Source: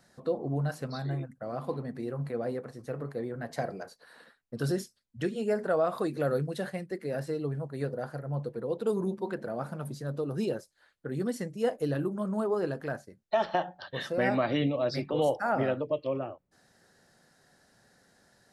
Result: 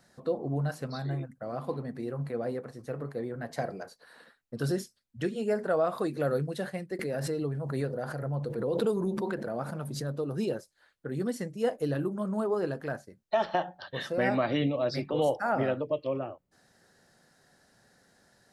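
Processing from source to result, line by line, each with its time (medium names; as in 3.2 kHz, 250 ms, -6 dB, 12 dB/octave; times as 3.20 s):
6.99–10.12 s: swell ahead of each attack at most 34 dB/s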